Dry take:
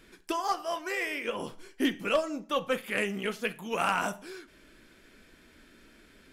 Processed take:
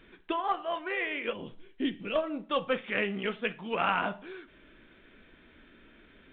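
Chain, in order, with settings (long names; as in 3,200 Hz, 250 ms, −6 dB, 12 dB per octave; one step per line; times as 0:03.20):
0:01.33–0:02.16: parametric band 1,100 Hz −12 dB 2.4 octaves
mu-law 64 kbit/s 8,000 Hz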